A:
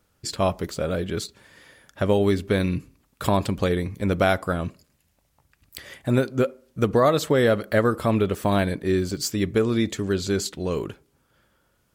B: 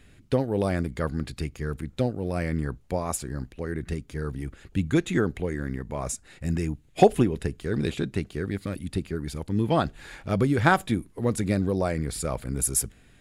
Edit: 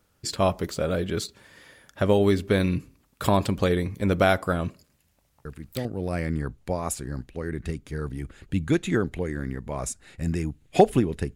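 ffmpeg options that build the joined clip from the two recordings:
ffmpeg -i cue0.wav -i cue1.wav -filter_complex "[1:a]asplit=2[link_01][link_02];[0:a]apad=whole_dur=11.35,atrim=end=11.35,atrim=end=5.852[link_03];[link_02]atrim=start=2.078:end=7.58[link_04];[link_01]atrim=start=1.68:end=2.08,asetpts=PTS-STARTPTS,volume=-6dB,afade=type=in:duration=0.004:curve=hsin,afade=type=out:start_time=0.396:duration=0.004:curve=hsin,adelay=240345S[link_05];[link_03][link_04]acrossfade=duration=0.004:curve1=hsin:curve2=hsin[link_06];[link_06][link_05]amix=inputs=2:normalize=0" out.wav

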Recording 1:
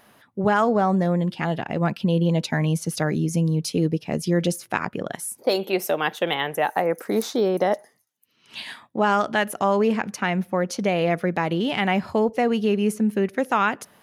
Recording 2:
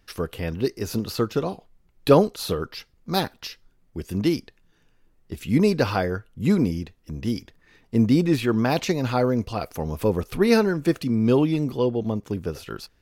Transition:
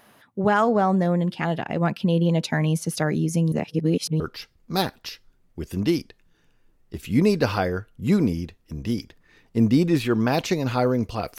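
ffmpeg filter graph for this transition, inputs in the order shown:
ffmpeg -i cue0.wav -i cue1.wav -filter_complex "[0:a]apad=whole_dur=11.38,atrim=end=11.38,asplit=2[link_01][link_02];[link_01]atrim=end=3.522[link_03];[link_02]atrim=start=3.518:end=4.202,asetpts=PTS-STARTPTS,areverse[link_04];[1:a]atrim=start=2.578:end=9.76[link_05];[link_03][link_04]acrossfade=duration=0.004:curve1=hsin:curve2=hsin[link_06];[link_06][link_05]acrossfade=duration=0.004:curve1=hsin:curve2=hsin" out.wav

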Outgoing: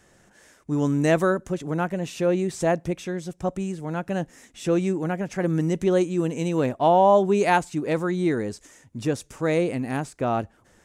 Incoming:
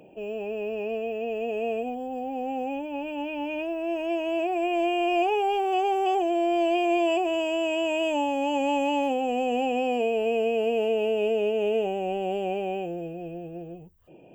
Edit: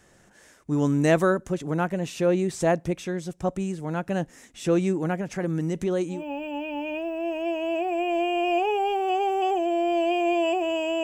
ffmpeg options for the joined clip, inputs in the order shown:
ffmpeg -i cue0.wav -i cue1.wav -filter_complex "[0:a]asettb=1/sr,asplit=3[link_01][link_02][link_03];[link_01]atrim=end=5.204[link_04];[link_02]atrim=start=5.2:end=6.24,asetpts=PTS-STARTPTS,afade=type=in:duration=0.004:curve=qsin,afade=type=out:start_time=1.036:duration=0.004:curve=qsin,acompressor=threshold=-25dB:ratio=2:attack=3.2:release=140:knee=1:detection=peak[link_05];[link_03]atrim=start=6.236[link_06];[link_04][link_05]acrossfade=duration=0.004:curve1=hsin:curve2=qsin[link_07];[link_07][link_06]acrossfade=duration=0.004:curve1=qsin:curve2=hsin,apad=whole_dur=11.03,atrim=end=11.03,atrim=end=6.24,asetpts=PTS-STARTPTS[link_08];[1:a]atrim=start=2.72:end=7.67,asetpts=PTS-STARTPTS[link_09];[link_08][link_09]acrossfade=duration=0.16:curve1=tri:curve2=tri" out.wav

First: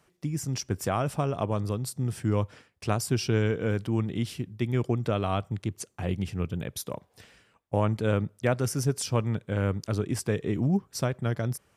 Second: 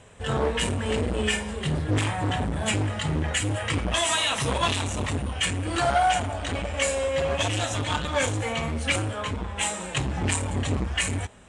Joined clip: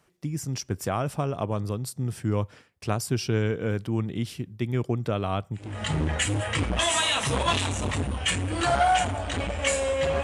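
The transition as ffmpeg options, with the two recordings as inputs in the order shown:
ffmpeg -i cue0.wav -i cue1.wav -filter_complex "[0:a]apad=whole_dur=10.23,atrim=end=10.23,atrim=end=5.85,asetpts=PTS-STARTPTS[link_01];[1:a]atrim=start=2.66:end=7.38,asetpts=PTS-STARTPTS[link_02];[link_01][link_02]acrossfade=duration=0.34:curve1=qua:curve2=qua" out.wav

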